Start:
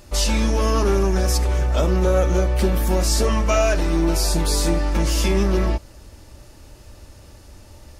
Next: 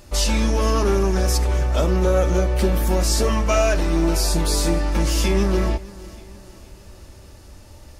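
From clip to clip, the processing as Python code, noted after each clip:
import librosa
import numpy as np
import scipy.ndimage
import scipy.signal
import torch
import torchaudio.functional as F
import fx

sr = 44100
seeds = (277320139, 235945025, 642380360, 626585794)

y = fx.echo_feedback(x, sr, ms=464, feedback_pct=52, wet_db=-20.5)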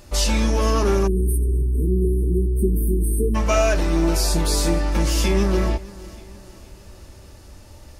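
y = fx.spec_erase(x, sr, start_s=1.07, length_s=2.28, low_hz=470.0, high_hz=8300.0)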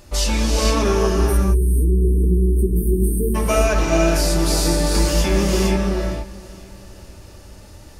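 y = fx.rev_gated(x, sr, seeds[0], gate_ms=490, shape='rising', drr_db=0.0)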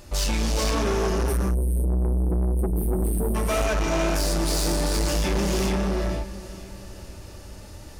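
y = 10.0 ** (-20.0 / 20.0) * np.tanh(x / 10.0 ** (-20.0 / 20.0))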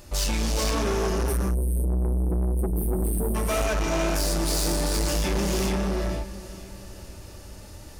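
y = fx.high_shelf(x, sr, hz=8300.0, db=4.5)
y = y * librosa.db_to_amplitude(-1.5)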